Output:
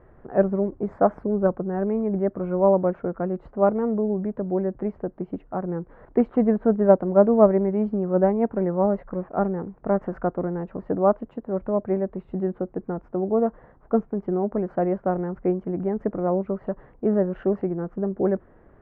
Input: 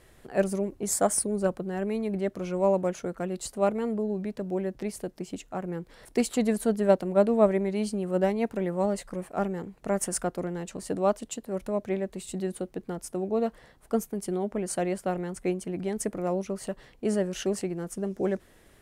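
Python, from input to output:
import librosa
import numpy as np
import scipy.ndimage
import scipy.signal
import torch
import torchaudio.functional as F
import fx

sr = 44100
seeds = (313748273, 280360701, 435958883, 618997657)

y = scipy.signal.sosfilt(scipy.signal.butter(4, 1400.0, 'lowpass', fs=sr, output='sos'), x)
y = y * 10.0 ** (5.5 / 20.0)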